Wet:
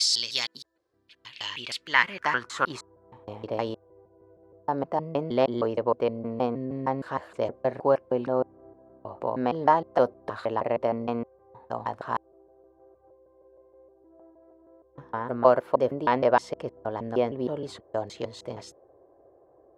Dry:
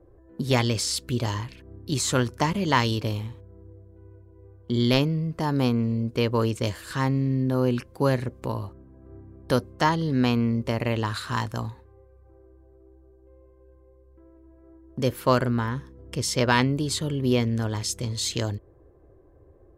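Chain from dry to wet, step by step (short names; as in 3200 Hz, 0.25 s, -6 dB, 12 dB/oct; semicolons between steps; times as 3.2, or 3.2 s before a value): slices in reverse order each 0.156 s, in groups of 6; band-pass sweep 4500 Hz -> 690 Hz, 0.95–3.31; gain +8 dB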